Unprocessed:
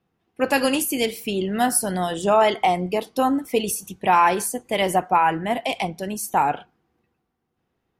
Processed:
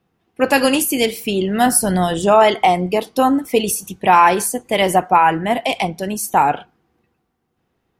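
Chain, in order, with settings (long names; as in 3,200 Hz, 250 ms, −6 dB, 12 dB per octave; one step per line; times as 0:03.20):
0:01.66–0:02.25: low-shelf EQ 130 Hz +11 dB
level +5.5 dB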